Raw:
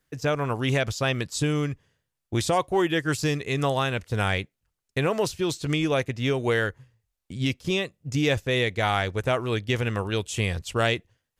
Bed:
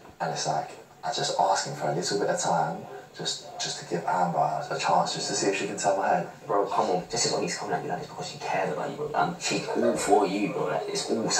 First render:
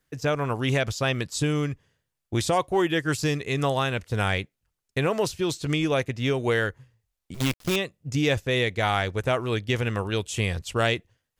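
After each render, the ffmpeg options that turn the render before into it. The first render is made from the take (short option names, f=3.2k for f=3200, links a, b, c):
-filter_complex "[0:a]asettb=1/sr,asplit=3[a][b][c];[a]atrim=end=7.344[d];[b]atrim=start=7.34:end=7.76,asetpts=PTS-STARTPTS,afade=t=in:d=0.004:c=qsin,afade=t=out:st=0.416:d=0.004:c=qsin,acrusher=bits=5:dc=4:mix=0:aa=0.000001[e];[c]atrim=start=7.756[f];[d][e]acrossfade=d=0.004:c1=hsin:c2=qsin[g];[g][f]acrossfade=d=0.004:c1=qsin:c2=hsin"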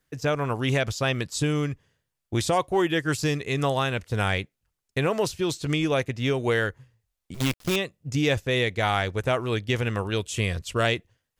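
-filter_complex "[0:a]asettb=1/sr,asplit=3[a][b][c];[a]atrim=end=10.184[d];[b]atrim=start=10.18:end=10.85,asetpts=PTS-STARTPTS,afade=t=in:d=0.004:c=qsin,afade=t=out:st=0.666:d=0.004:c=qsin,asuperstop=centerf=820:order=4:qfactor=5.5[e];[c]atrim=start=10.846[f];[d][e]acrossfade=d=0.004:c1=hsin:c2=qsin[g];[g][f]acrossfade=d=0.004:c1=qsin:c2=hsin"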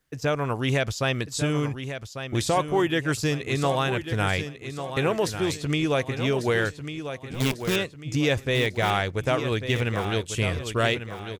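-af "aecho=1:1:1146|2292|3438|4584:0.335|0.137|0.0563|0.0231"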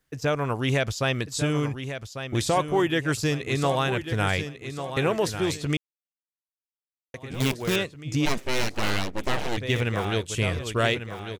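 -filter_complex "[0:a]asplit=3[a][b][c];[a]afade=t=out:st=8.25:d=0.02[d];[b]aeval=exprs='abs(val(0))':c=same,afade=t=in:st=8.25:d=0.02,afade=t=out:st=9.56:d=0.02[e];[c]afade=t=in:st=9.56:d=0.02[f];[d][e][f]amix=inputs=3:normalize=0,asplit=3[g][h][i];[g]atrim=end=5.77,asetpts=PTS-STARTPTS,afade=t=out:st=5.766:d=0.004:c=hsin[j];[h]atrim=start=5.77:end=7.14,asetpts=PTS-STARTPTS,volume=0[k];[i]atrim=start=7.14,asetpts=PTS-STARTPTS,afade=t=in:d=0.004:c=hsin[l];[j][k][l]concat=n=3:v=0:a=1"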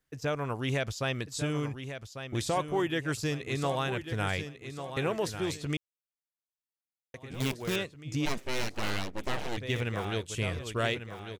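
-af "volume=-6.5dB"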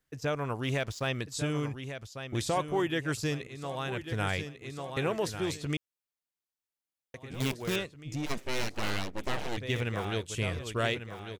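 -filter_complex "[0:a]asettb=1/sr,asplit=3[a][b][c];[a]atrim=end=0.634[d];[b]atrim=start=0.63:end=1.07,asetpts=PTS-STARTPTS,afade=t=in:d=0.004:c=qsin,afade=t=out:st=0.436:d=0.004:c=qsin,aeval=exprs='sgn(val(0))*max(abs(val(0))-0.00316,0)':c=same[e];[c]atrim=start=1.066[f];[d][e]acrossfade=d=0.004:c1=hsin:c2=qsin[g];[g][f]acrossfade=d=0.004:c1=qsin:c2=hsin,asplit=3[h][i][j];[h]afade=t=out:st=7.79:d=0.02[k];[i]aeval=exprs='(tanh(28.2*val(0)+0.3)-tanh(0.3))/28.2':c=same,afade=t=in:st=7.79:d=0.02,afade=t=out:st=8.29:d=0.02[l];[j]afade=t=in:st=8.29:d=0.02[m];[k][l][m]amix=inputs=3:normalize=0,asplit=2[n][o];[n]atrim=end=3.47,asetpts=PTS-STARTPTS,afade=t=out:st=3.466:d=0.004:c=hsin:silence=0.158489[p];[o]atrim=start=3.47,asetpts=PTS-STARTPTS,afade=t=in:d=0.62:silence=0.158489[q];[p][q]concat=n=2:v=0:a=1"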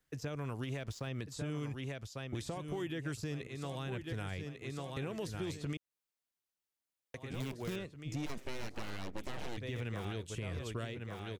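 -filter_complex "[0:a]alimiter=level_in=1dB:limit=-24dB:level=0:latency=1:release=90,volume=-1dB,acrossover=split=350|2100[a][b][c];[a]acompressor=threshold=-37dB:ratio=4[d];[b]acompressor=threshold=-46dB:ratio=4[e];[c]acompressor=threshold=-50dB:ratio=4[f];[d][e][f]amix=inputs=3:normalize=0"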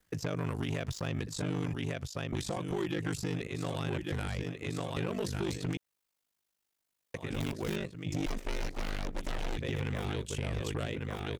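-af "aeval=exprs='0.0531*sin(PI/2*2*val(0)/0.0531)':c=same,aeval=exprs='val(0)*sin(2*PI*25*n/s)':c=same"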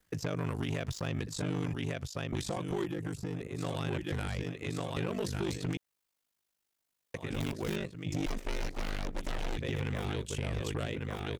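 -filter_complex "[0:a]asettb=1/sr,asplit=3[a][b][c];[a]atrim=end=2.844[d];[b]atrim=start=2.84:end=3.58,asetpts=PTS-STARTPTS,afade=t=in:d=0.004:c=qsin,afade=t=out:st=0.736:d=0.004:c=qsin,acrossover=split=630|1600|7500[e][f][g][h];[e]acompressor=threshold=-34dB:ratio=3[i];[f]acompressor=threshold=-50dB:ratio=3[j];[g]acompressor=threshold=-58dB:ratio=3[k];[h]acompressor=threshold=-58dB:ratio=3[l];[i][j][k][l]amix=inputs=4:normalize=0[m];[c]atrim=start=3.576[n];[d][m]acrossfade=d=0.004:c1=hsin:c2=qsin[o];[o][n]acrossfade=d=0.004:c1=qsin:c2=hsin"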